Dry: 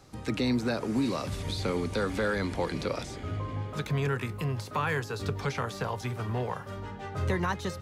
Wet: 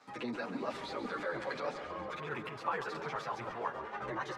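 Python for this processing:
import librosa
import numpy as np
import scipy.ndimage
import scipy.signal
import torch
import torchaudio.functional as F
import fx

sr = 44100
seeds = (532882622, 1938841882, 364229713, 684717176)

p1 = scipy.signal.sosfilt(scipy.signal.butter(2, 130.0, 'highpass', fs=sr, output='sos'), x)
p2 = fx.over_compress(p1, sr, threshold_db=-36.0, ratio=-1.0)
p3 = p1 + (p2 * librosa.db_to_amplitude(1.5))
p4 = fx.filter_lfo_bandpass(p3, sr, shape='saw_down', hz=1.6, low_hz=710.0, high_hz=1600.0, q=0.83)
p5 = fx.wow_flutter(p4, sr, seeds[0], rate_hz=2.1, depth_cents=24.0)
p6 = fx.stretch_grains(p5, sr, factor=0.56, grain_ms=20.0)
p7 = fx.chorus_voices(p6, sr, voices=6, hz=0.31, base_ms=11, depth_ms=5.0, mix_pct=60)
p8 = p7 + fx.echo_feedback(p7, sr, ms=138, feedback_pct=59, wet_db=-11.5, dry=0)
y = p8 * librosa.db_to_amplitude(-2.5)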